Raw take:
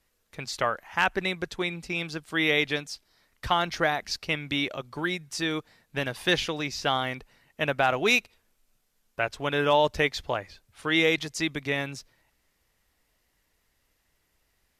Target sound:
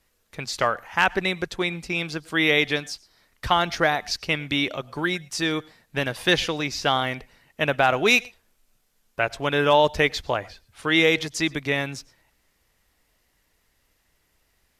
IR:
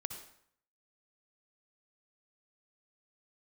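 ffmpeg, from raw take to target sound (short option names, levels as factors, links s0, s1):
-filter_complex "[0:a]asplit=2[s0][s1];[1:a]atrim=start_sample=2205,atrim=end_sample=3528,asetrate=26901,aresample=44100[s2];[s1][s2]afir=irnorm=-1:irlink=0,volume=0.188[s3];[s0][s3]amix=inputs=2:normalize=0,volume=1.33"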